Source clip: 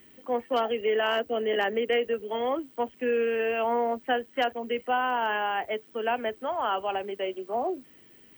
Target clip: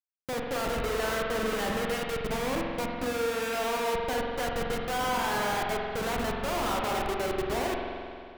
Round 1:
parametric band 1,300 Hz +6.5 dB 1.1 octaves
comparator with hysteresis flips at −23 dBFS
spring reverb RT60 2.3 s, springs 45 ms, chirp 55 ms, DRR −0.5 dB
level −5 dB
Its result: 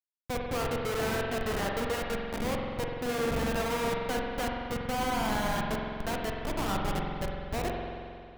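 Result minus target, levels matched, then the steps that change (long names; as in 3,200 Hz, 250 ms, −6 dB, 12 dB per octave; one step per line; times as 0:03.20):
comparator with hysteresis: distortion +6 dB
change: comparator with hysteresis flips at −30.5 dBFS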